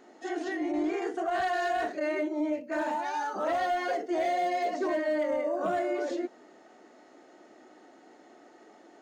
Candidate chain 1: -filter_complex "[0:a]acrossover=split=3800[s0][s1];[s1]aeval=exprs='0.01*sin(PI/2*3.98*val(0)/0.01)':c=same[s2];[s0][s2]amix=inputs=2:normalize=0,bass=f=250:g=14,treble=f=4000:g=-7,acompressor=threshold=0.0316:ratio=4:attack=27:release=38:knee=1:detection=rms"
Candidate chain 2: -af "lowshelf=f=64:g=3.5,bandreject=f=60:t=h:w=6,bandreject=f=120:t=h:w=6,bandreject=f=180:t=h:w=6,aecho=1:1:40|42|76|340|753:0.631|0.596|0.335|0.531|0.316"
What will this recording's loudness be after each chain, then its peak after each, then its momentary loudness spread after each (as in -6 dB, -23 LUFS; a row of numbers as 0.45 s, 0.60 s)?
-31.0 LUFS, -27.5 LUFS; -20.5 dBFS, -14.0 dBFS; 2 LU, 10 LU